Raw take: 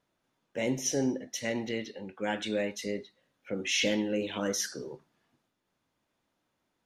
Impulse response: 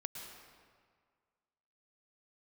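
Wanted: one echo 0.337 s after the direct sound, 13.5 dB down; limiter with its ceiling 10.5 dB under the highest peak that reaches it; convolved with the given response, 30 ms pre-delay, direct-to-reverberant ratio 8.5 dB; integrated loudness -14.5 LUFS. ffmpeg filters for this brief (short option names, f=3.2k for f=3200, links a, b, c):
-filter_complex "[0:a]alimiter=level_in=1.5dB:limit=-24dB:level=0:latency=1,volume=-1.5dB,aecho=1:1:337:0.211,asplit=2[a][b];[1:a]atrim=start_sample=2205,adelay=30[c];[b][c]afir=irnorm=-1:irlink=0,volume=-7dB[d];[a][d]amix=inputs=2:normalize=0,volume=21dB"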